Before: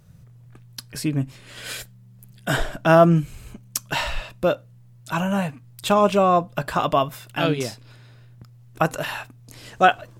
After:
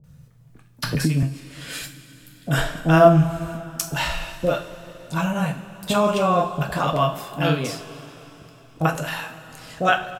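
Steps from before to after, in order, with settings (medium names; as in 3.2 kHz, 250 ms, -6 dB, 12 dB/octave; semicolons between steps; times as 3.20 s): bands offset in time lows, highs 40 ms, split 620 Hz; on a send at -3.5 dB: reverberation, pre-delay 3 ms; 0.83–1.23 s: on the sum: three bands compressed up and down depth 100%; trim -1 dB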